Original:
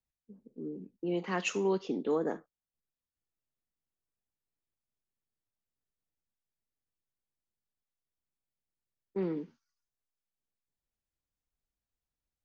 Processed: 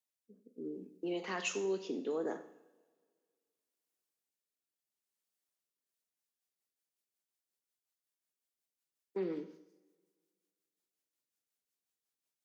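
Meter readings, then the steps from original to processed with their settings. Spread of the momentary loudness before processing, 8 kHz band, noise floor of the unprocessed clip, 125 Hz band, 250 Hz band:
13 LU, no reading, under -85 dBFS, -11.0 dB, -5.5 dB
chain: rotary cabinet horn 0.7 Hz, later 5.5 Hz, at 5.49 s; high-pass 280 Hz 12 dB/octave; peak limiter -29 dBFS, peak gain reduction 6 dB; treble shelf 3.9 kHz +8.5 dB; two-slope reverb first 0.75 s, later 2.1 s, from -19 dB, DRR 9 dB

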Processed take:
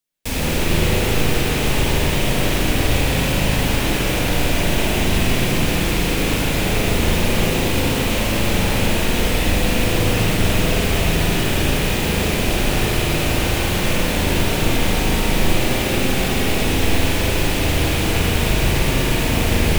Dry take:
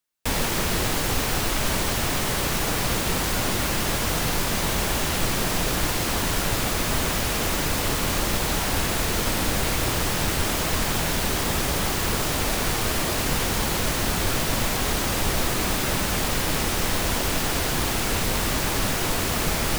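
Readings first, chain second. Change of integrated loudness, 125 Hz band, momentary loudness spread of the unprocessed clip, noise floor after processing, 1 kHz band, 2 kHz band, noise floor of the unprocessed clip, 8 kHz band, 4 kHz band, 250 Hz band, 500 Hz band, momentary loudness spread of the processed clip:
+4.5 dB, +8.5 dB, 0 LU, -20 dBFS, +2.0 dB, +5.0 dB, -25 dBFS, 0.0 dB, +4.0 dB, +8.0 dB, +7.0 dB, 1 LU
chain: rattle on loud lows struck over -29 dBFS, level -20 dBFS; peaking EQ 1.2 kHz -8.5 dB 1.4 oct; spring tank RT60 3.5 s, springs 38/50 ms, chirp 70 ms, DRR -7.5 dB

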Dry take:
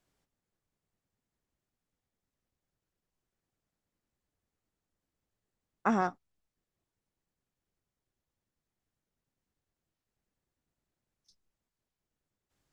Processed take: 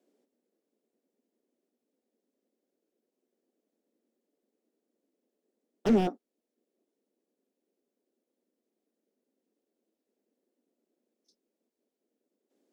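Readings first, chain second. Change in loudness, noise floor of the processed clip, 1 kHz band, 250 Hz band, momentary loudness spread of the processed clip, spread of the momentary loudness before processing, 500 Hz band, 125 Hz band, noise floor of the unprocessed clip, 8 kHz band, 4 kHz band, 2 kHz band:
+3.5 dB, under -85 dBFS, -5.0 dB, +6.0 dB, 8 LU, 5 LU, +7.5 dB, +6.0 dB, under -85 dBFS, no reading, +10.0 dB, -6.5 dB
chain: elliptic high-pass 230 Hz, stop band 50 dB; wavefolder -26.5 dBFS; resonant low shelf 710 Hz +13.5 dB, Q 1.5; trim -2.5 dB

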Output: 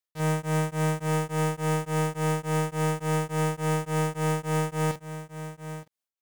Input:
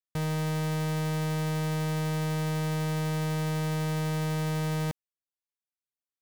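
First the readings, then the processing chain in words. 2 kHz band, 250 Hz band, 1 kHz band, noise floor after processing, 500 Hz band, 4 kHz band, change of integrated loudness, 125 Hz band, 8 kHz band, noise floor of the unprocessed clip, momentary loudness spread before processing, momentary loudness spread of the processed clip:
+3.5 dB, +1.0 dB, +6.5 dB, under -85 dBFS, +6.0 dB, -1.0 dB, +2.0 dB, +0.5 dB, +4.5 dB, under -85 dBFS, 1 LU, 11 LU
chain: bass shelf 180 Hz -8 dB; doubling 45 ms -4 dB; delay 919 ms -11.5 dB; tremolo of two beating tones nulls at 3.5 Hz; trim +5 dB

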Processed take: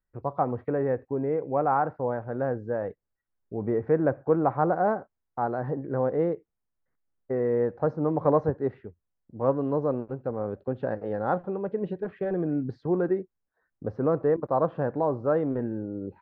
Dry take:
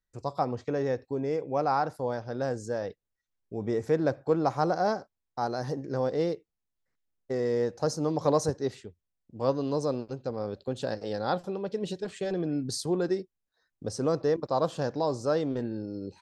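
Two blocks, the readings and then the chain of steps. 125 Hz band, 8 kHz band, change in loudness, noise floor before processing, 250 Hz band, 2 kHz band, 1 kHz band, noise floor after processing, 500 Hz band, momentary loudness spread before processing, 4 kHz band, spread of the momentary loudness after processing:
+2.5 dB, under -35 dB, +2.5 dB, -84 dBFS, +2.5 dB, +1.0 dB, +2.5 dB, -82 dBFS, +2.5 dB, 8 LU, under -20 dB, 9 LU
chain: low-pass 1.8 kHz 24 dB/octave; trim +2.5 dB

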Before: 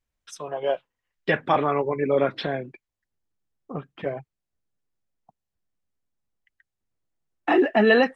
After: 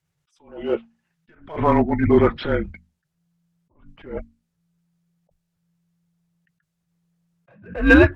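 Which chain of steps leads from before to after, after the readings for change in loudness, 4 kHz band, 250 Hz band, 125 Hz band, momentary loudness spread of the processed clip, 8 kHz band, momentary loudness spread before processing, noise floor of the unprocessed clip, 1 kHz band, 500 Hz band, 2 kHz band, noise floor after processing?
+4.5 dB, -3.0 dB, +6.5 dB, +9.5 dB, 20 LU, no reading, 19 LU, -85 dBFS, -0.5 dB, +0.5 dB, +4.0 dB, -77 dBFS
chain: hum notches 50/100/150/200/250/300/350/400/450 Hz; frequency shift -170 Hz; low-pass that closes with the level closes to 2.8 kHz, closed at -19.5 dBFS; in parallel at -9 dB: hard clipper -21.5 dBFS, distortion -7 dB; on the sum: attacks held to a fixed rise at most 130 dB/s; trim +5.5 dB

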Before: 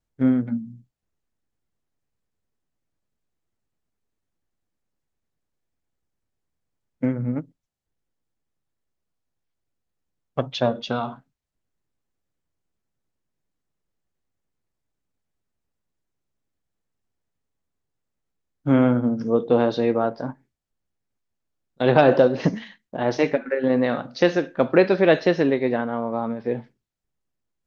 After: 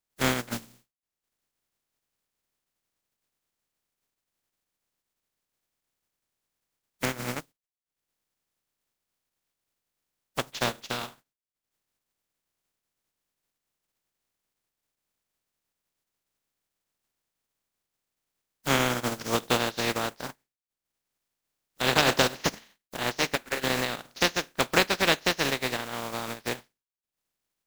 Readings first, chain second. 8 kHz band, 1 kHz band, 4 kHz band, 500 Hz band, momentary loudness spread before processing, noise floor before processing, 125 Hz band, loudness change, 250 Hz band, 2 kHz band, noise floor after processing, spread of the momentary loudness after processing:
no reading, -2.5 dB, +8.0 dB, -11.0 dB, 14 LU, -81 dBFS, -8.0 dB, -6.0 dB, -12.0 dB, +2.0 dB, under -85 dBFS, 13 LU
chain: spectral contrast reduction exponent 0.3; transient shaper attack +2 dB, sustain -8 dB; trim -7.5 dB

